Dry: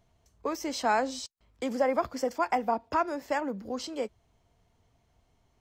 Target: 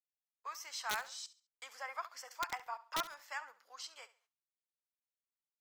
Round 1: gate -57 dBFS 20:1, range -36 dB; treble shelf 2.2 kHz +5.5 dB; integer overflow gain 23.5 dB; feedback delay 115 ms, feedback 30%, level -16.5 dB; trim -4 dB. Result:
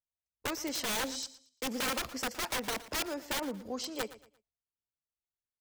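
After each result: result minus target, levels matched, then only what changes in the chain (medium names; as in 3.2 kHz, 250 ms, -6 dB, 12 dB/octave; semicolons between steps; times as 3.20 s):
echo 46 ms late; 1 kHz band -5.0 dB
change: feedback delay 69 ms, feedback 30%, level -16.5 dB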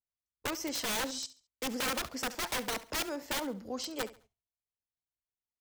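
1 kHz band -5.0 dB
add after gate: ladder high-pass 960 Hz, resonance 35%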